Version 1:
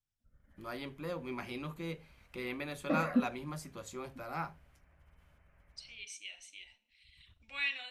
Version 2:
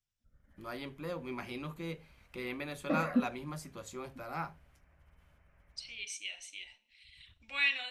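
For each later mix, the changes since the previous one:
second voice +5.0 dB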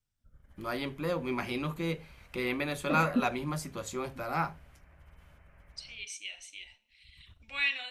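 first voice +7.5 dB

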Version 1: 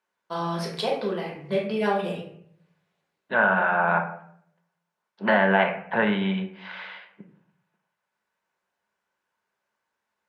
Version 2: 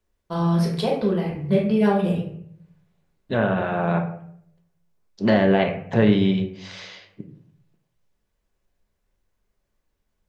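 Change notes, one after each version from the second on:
second voice: remove speaker cabinet 140–3000 Hz, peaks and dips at 190 Hz +8 dB, 300 Hz -8 dB, 430 Hz -3 dB, 920 Hz +9 dB, 1500 Hz +9 dB; master: remove weighting filter A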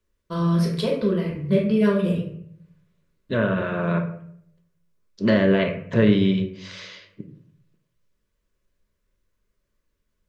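master: add Butterworth band-stop 780 Hz, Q 2.7

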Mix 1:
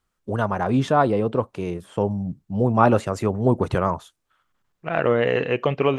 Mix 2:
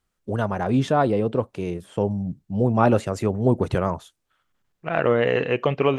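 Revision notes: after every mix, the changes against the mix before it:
first voice: add bell 1100 Hz -5 dB 0.9 oct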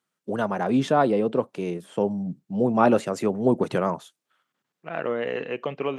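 second voice -7.5 dB; master: add HPF 160 Hz 24 dB/oct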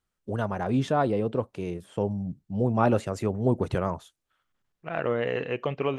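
first voice -4.5 dB; master: remove HPF 160 Hz 24 dB/oct

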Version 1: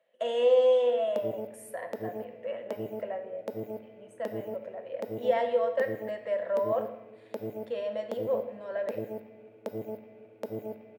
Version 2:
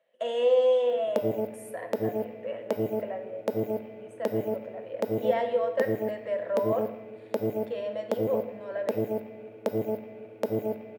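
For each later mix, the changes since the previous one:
background +8.0 dB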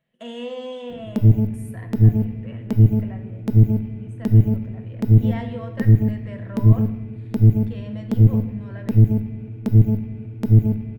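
master: remove resonant high-pass 550 Hz, resonance Q 5.4

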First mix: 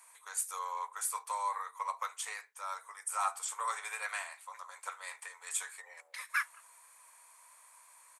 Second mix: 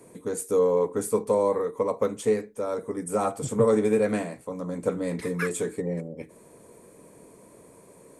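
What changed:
second voice: entry -0.95 s; master: remove steep high-pass 930 Hz 36 dB/oct

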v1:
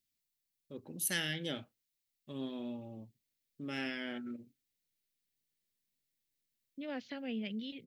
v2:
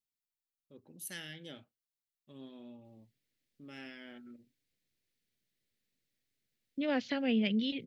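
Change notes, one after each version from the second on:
first voice -9.5 dB; second voice +9.0 dB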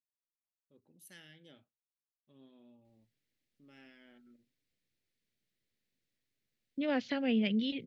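first voice -10.0 dB; master: add high shelf 4500 Hz -4 dB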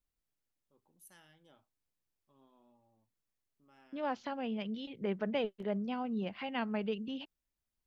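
second voice: entry -2.85 s; master: add graphic EQ 125/250/500/1000/2000/4000 Hz -6/-7/-6/+12/-11/-8 dB

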